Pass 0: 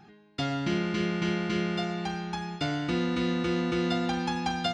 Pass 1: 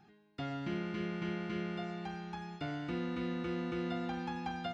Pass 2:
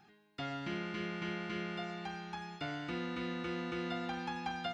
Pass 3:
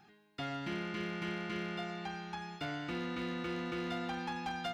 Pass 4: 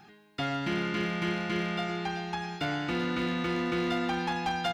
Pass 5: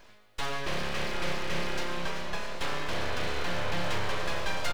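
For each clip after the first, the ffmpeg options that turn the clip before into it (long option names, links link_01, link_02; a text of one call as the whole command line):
ffmpeg -i in.wav -filter_complex "[0:a]acrossover=split=3000[link_01][link_02];[link_02]acompressor=threshold=-52dB:ratio=4:attack=1:release=60[link_03];[link_01][link_03]amix=inputs=2:normalize=0,volume=-9dB" out.wav
ffmpeg -i in.wav -af "tiltshelf=frequency=650:gain=-4" out.wav
ffmpeg -i in.wav -af "asoftclip=type=hard:threshold=-33dB,volume=1dB" out.wav
ffmpeg -i in.wav -af "aecho=1:1:383:0.251,volume=8dB" out.wav
ffmpeg -i in.wav -filter_complex "[0:a]aeval=exprs='abs(val(0))':channel_layout=same,asplit=2[link_01][link_02];[link_02]adelay=758,volume=-7dB,highshelf=frequency=4000:gain=-17.1[link_03];[link_01][link_03]amix=inputs=2:normalize=0,volume=1.5dB" out.wav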